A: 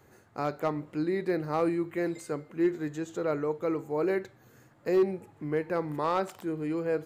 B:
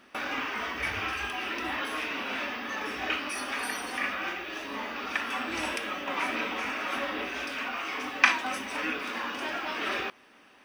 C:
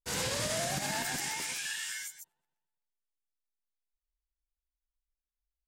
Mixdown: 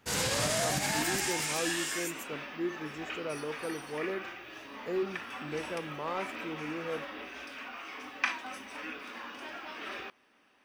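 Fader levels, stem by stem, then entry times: -8.0 dB, -9.5 dB, +2.5 dB; 0.00 s, 0.00 s, 0.00 s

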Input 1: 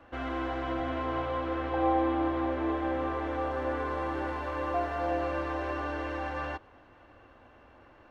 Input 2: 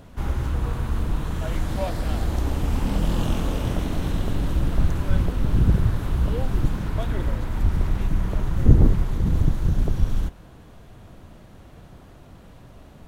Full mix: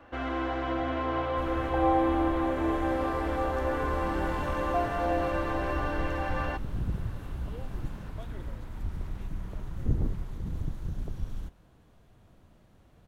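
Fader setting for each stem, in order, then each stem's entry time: +2.0 dB, -13.5 dB; 0.00 s, 1.20 s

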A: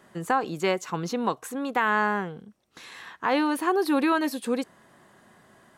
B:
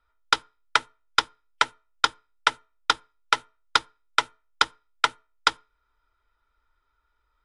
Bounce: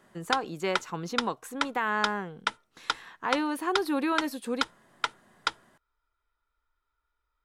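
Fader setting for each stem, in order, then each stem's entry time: -5.0 dB, -8.0 dB; 0.00 s, 0.00 s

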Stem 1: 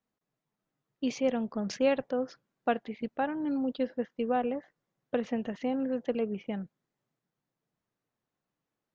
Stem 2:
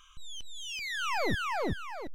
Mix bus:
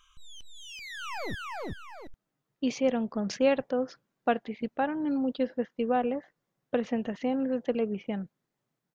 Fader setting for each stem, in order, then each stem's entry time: +2.0 dB, -5.5 dB; 1.60 s, 0.00 s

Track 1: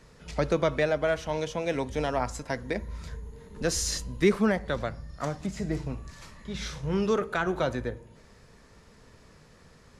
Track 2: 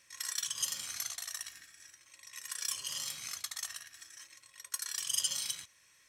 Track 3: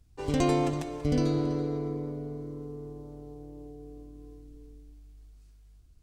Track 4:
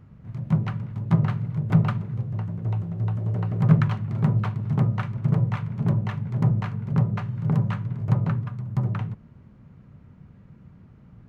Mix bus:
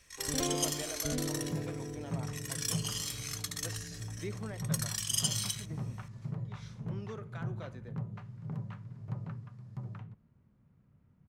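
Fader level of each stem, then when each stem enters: -19.0 dB, +1.0 dB, -9.5 dB, -17.0 dB; 0.00 s, 0.00 s, 0.00 s, 1.00 s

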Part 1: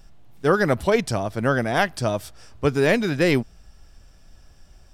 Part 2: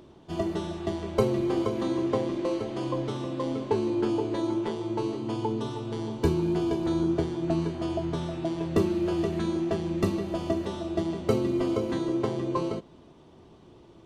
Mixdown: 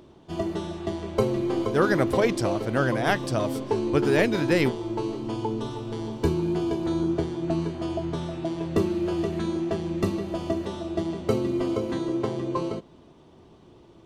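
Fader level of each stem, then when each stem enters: -3.5 dB, +0.5 dB; 1.30 s, 0.00 s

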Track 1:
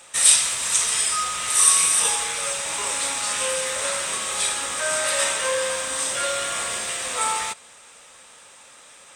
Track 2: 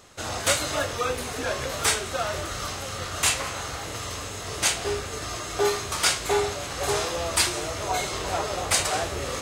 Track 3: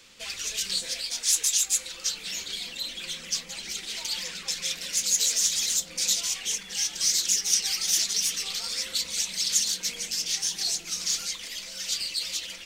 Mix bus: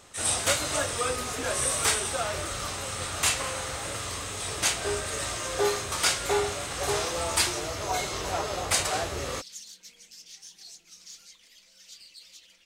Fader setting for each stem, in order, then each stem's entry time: -13.0 dB, -2.5 dB, -19.0 dB; 0.00 s, 0.00 s, 0.00 s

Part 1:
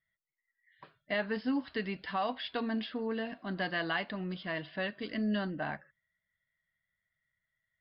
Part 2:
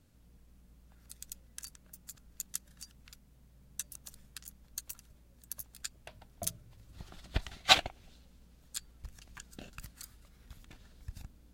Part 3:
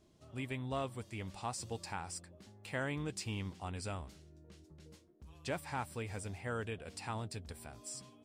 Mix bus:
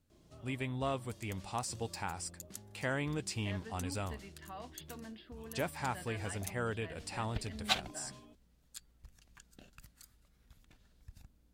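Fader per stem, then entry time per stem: -15.0 dB, -9.0 dB, +2.5 dB; 2.35 s, 0.00 s, 0.10 s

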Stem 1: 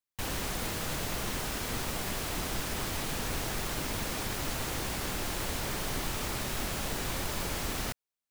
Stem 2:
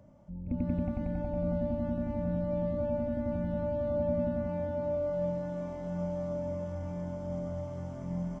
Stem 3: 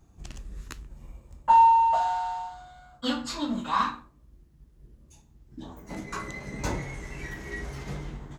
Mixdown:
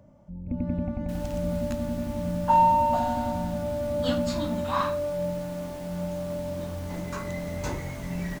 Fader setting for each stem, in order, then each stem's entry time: -13.5 dB, +2.5 dB, -2.5 dB; 0.90 s, 0.00 s, 1.00 s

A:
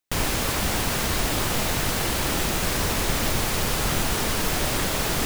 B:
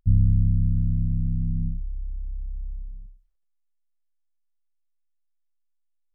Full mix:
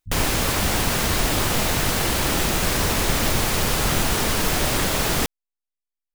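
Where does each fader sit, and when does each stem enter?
+3.0 dB, -16.0 dB; 0.00 s, 0.00 s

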